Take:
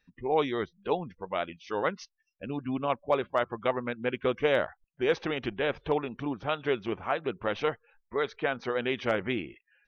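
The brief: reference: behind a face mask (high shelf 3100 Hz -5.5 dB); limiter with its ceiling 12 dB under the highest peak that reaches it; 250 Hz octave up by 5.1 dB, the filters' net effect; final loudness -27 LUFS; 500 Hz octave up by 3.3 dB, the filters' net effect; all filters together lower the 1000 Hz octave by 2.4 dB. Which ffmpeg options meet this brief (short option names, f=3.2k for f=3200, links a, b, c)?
-af "equalizer=f=250:t=o:g=5.5,equalizer=f=500:t=o:g=3.5,equalizer=f=1k:t=o:g=-4.5,alimiter=limit=-23dB:level=0:latency=1,highshelf=f=3.1k:g=-5.5,volume=7.5dB"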